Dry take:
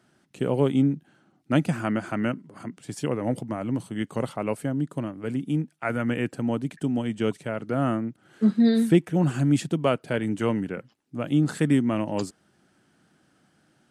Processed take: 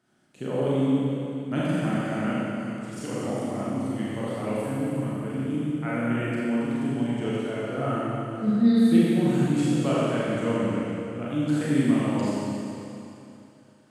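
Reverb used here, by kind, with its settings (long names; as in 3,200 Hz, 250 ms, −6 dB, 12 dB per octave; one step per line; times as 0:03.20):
four-comb reverb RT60 2.9 s, combs from 30 ms, DRR −8.5 dB
level −9 dB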